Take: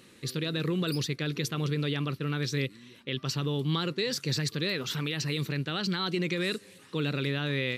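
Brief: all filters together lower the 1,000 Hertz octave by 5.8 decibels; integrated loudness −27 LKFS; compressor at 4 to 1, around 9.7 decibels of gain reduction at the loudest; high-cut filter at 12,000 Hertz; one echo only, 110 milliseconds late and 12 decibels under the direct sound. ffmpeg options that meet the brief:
ffmpeg -i in.wav -af "lowpass=12000,equalizer=frequency=1000:width_type=o:gain=-8.5,acompressor=threshold=-38dB:ratio=4,aecho=1:1:110:0.251,volume=13dB" out.wav

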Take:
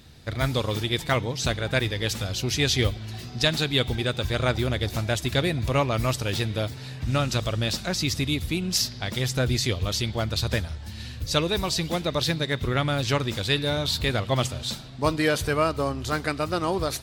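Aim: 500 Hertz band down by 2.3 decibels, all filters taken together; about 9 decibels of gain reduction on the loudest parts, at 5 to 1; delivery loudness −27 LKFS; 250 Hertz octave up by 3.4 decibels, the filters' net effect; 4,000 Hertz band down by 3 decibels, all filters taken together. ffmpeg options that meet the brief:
ffmpeg -i in.wav -af "equalizer=frequency=250:width_type=o:gain=6,equalizer=frequency=500:width_type=o:gain=-4.5,equalizer=frequency=4000:width_type=o:gain=-3.5,acompressor=threshold=-28dB:ratio=5,volume=5.5dB" out.wav

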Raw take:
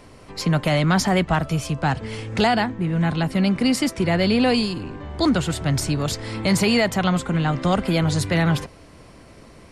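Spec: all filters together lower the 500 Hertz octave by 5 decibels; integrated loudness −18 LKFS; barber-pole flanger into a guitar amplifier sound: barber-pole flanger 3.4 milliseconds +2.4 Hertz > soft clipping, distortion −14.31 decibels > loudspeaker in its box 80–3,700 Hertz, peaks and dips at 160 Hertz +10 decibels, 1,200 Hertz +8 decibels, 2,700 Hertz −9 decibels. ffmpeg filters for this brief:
ffmpeg -i in.wav -filter_complex "[0:a]equalizer=frequency=500:width_type=o:gain=-7,asplit=2[link_01][link_02];[link_02]adelay=3.4,afreqshift=2.4[link_03];[link_01][link_03]amix=inputs=2:normalize=1,asoftclip=threshold=-20dB,highpass=80,equalizer=frequency=160:width_type=q:width=4:gain=10,equalizer=frequency=1200:width_type=q:width=4:gain=8,equalizer=frequency=2700:width_type=q:width=4:gain=-9,lowpass=frequency=3700:width=0.5412,lowpass=frequency=3700:width=1.3066,volume=5dB" out.wav

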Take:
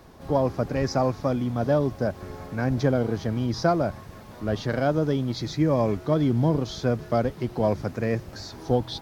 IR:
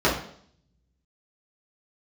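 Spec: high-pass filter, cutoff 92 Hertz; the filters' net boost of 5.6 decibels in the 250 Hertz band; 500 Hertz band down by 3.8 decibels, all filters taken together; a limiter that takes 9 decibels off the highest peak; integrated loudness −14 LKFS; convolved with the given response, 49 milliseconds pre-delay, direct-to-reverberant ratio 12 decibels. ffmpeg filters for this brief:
-filter_complex "[0:a]highpass=92,equalizer=frequency=250:width_type=o:gain=8.5,equalizer=frequency=500:width_type=o:gain=-7,alimiter=limit=-17.5dB:level=0:latency=1,asplit=2[link_01][link_02];[1:a]atrim=start_sample=2205,adelay=49[link_03];[link_02][link_03]afir=irnorm=-1:irlink=0,volume=-30.5dB[link_04];[link_01][link_04]amix=inputs=2:normalize=0,volume=12.5dB"

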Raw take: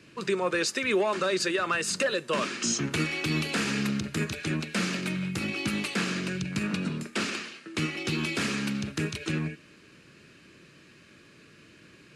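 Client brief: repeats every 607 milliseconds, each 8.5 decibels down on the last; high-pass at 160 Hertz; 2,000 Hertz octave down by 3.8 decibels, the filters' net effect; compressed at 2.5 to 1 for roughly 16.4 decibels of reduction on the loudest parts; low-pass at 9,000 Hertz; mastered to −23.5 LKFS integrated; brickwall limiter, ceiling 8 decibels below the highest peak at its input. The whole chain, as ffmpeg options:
ffmpeg -i in.wav -af "highpass=160,lowpass=9000,equalizer=frequency=2000:width_type=o:gain=-5,acompressor=threshold=-49dB:ratio=2.5,alimiter=level_in=12.5dB:limit=-24dB:level=0:latency=1,volume=-12.5dB,aecho=1:1:607|1214|1821|2428:0.376|0.143|0.0543|0.0206,volume=22.5dB" out.wav

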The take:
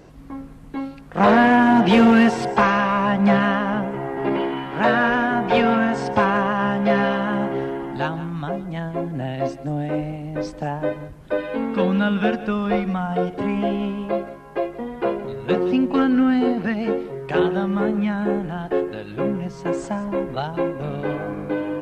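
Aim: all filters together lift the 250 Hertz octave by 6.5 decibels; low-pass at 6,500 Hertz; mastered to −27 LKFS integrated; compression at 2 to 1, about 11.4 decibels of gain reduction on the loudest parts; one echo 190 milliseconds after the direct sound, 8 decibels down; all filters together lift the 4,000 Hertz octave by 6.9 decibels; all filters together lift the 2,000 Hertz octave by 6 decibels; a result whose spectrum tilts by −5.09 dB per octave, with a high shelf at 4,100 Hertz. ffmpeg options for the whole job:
ffmpeg -i in.wav -af "lowpass=6500,equalizer=frequency=250:width_type=o:gain=7.5,equalizer=frequency=2000:width_type=o:gain=6,equalizer=frequency=4000:width_type=o:gain=4.5,highshelf=frequency=4100:gain=5,acompressor=threshold=-26dB:ratio=2,aecho=1:1:190:0.398,volume=-3.5dB" out.wav

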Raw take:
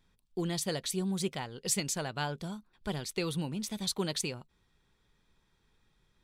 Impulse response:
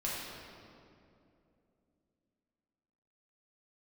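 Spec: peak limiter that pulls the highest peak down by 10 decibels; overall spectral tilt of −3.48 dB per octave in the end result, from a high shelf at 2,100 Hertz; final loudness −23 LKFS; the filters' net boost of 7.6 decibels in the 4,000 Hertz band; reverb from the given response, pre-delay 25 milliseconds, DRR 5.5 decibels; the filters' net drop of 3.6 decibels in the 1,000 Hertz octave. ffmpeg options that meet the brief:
-filter_complex "[0:a]equalizer=frequency=1000:width_type=o:gain=-6,highshelf=frequency=2100:gain=4,equalizer=frequency=4000:width_type=o:gain=5.5,alimiter=limit=-22dB:level=0:latency=1,asplit=2[link_01][link_02];[1:a]atrim=start_sample=2205,adelay=25[link_03];[link_02][link_03]afir=irnorm=-1:irlink=0,volume=-10.5dB[link_04];[link_01][link_04]amix=inputs=2:normalize=0,volume=9.5dB"

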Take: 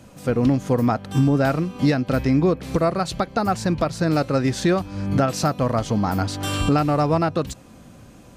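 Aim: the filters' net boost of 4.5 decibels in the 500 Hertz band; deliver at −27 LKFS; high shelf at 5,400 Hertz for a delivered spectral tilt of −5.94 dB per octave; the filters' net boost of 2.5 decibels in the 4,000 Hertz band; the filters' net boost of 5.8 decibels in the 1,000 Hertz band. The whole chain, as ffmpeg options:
ffmpeg -i in.wav -af "equalizer=frequency=500:width_type=o:gain=3.5,equalizer=frequency=1000:width_type=o:gain=7,equalizer=frequency=4000:width_type=o:gain=5,highshelf=frequency=5400:gain=-5.5,volume=-8.5dB" out.wav

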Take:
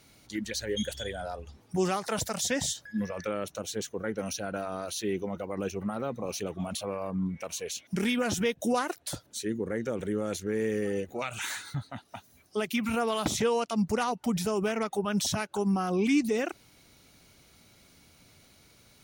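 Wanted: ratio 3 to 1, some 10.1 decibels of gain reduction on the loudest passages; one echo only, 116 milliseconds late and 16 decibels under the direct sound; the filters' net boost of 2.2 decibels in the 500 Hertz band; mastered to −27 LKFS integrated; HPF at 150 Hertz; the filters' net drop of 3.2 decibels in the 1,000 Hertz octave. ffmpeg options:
ffmpeg -i in.wav -af "highpass=150,equalizer=frequency=500:width_type=o:gain=4,equalizer=frequency=1000:width_type=o:gain=-6.5,acompressor=threshold=-35dB:ratio=3,aecho=1:1:116:0.158,volume=10.5dB" out.wav

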